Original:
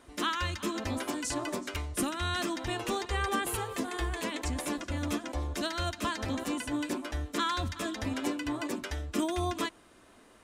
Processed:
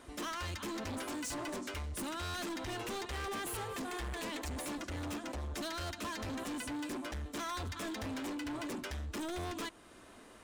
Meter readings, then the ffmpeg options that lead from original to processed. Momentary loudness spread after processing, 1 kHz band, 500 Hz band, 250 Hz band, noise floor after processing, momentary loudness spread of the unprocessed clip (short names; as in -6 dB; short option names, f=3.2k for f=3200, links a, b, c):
2 LU, -7.0 dB, -6.5 dB, -7.0 dB, -56 dBFS, 4 LU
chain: -filter_complex "[0:a]asplit=2[a][b];[b]acompressor=threshold=-42dB:ratio=6,volume=-1dB[c];[a][c]amix=inputs=2:normalize=0,asoftclip=type=hard:threshold=-34dB,volume=-3.5dB"